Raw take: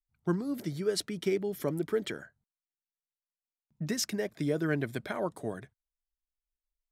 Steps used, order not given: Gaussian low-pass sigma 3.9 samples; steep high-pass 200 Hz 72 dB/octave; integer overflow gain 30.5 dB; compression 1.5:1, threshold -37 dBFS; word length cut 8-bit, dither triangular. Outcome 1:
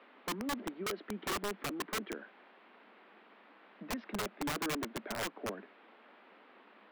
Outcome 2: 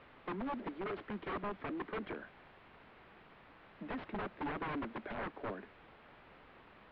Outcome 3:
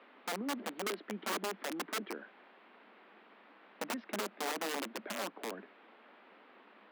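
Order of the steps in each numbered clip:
word length cut > Gaussian low-pass > compression > steep high-pass > integer overflow; steep high-pass > compression > word length cut > integer overflow > Gaussian low-pass; word length cut > compression > Gaussian low-pass > integer overflow > steep high-pass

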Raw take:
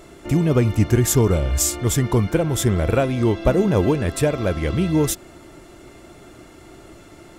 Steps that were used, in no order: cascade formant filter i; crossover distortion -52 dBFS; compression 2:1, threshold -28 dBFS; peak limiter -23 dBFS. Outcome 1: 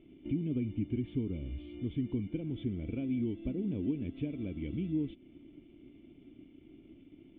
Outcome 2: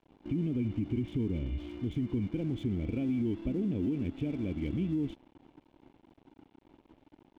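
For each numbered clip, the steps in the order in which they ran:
crossover distortion > compression > cascade formant filter > peak limiter; cascade formant filter > crossover distortion > peak limiter > compression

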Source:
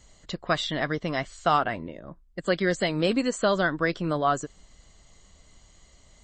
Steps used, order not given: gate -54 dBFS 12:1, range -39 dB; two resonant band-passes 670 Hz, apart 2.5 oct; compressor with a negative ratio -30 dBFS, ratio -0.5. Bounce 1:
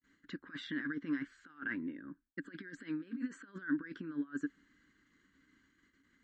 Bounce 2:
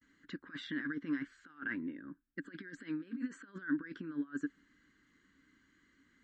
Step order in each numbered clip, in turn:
gate > compressor with a negative ratio > two resonant band-passes; compressor with a negative ratio > gate > two resonant band-passes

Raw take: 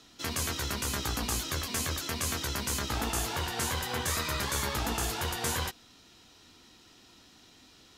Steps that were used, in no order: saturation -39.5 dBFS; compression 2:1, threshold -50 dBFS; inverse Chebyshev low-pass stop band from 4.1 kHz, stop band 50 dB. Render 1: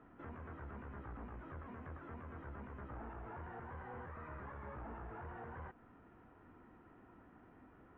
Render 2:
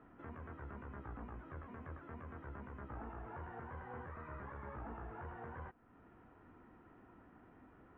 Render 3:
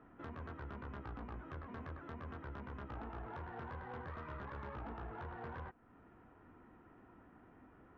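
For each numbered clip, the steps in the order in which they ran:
saturation > inverse Chebyshev low-pass > compression; compression > saturation > inverse Chebyshev low-pass; inverse Chebyshev low-pass > compression > saturation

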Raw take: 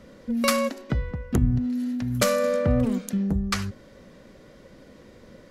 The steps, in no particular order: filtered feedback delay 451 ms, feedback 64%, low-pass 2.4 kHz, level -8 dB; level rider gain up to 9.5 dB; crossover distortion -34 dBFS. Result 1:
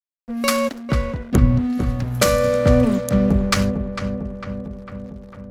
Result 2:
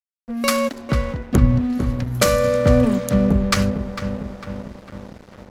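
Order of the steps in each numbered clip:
level rider > crossover distortion > filtered feedback delay; level rider > filtered feedback delay > crossover distortion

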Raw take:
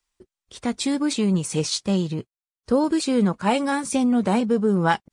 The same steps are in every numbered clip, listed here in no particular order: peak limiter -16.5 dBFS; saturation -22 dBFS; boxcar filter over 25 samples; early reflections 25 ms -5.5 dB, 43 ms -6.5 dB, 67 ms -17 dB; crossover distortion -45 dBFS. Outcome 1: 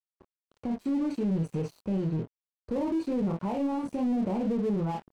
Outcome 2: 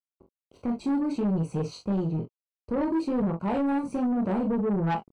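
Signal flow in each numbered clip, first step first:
early reflections > peak limiter > saturation > boxcar filter > crossover distortion; crossover distortion > boxcar filter > peak limiter > early reflections > saturation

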